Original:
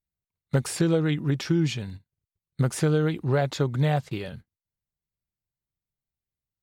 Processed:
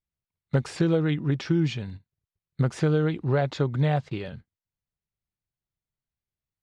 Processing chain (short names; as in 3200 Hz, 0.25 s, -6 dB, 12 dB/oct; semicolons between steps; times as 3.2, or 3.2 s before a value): air absorption 110 m